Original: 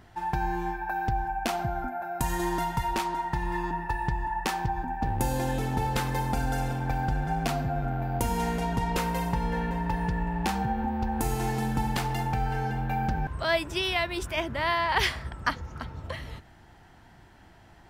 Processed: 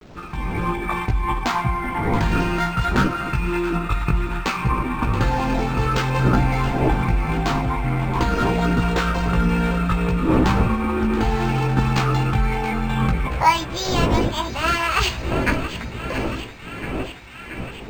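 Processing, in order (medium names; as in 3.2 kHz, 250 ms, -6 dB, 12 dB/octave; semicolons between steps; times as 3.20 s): wind noise 280 Hz -34 dBFS; time-frequency box 13.26–13.52 s, 420–840 Hz +10 dB; level rider gain up to 11 dB; chorus voices 2, 0.63 Hz, delay 17 ms, depth 1.7 ms; formant shift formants +6 st; word length cut 8-bit, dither none; on a send: band-passed feedback delay 678 ms, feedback 83%, band-pass 2.2 kHz, level -10.5 dB; on the sum: decimation joined by straight lines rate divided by 4×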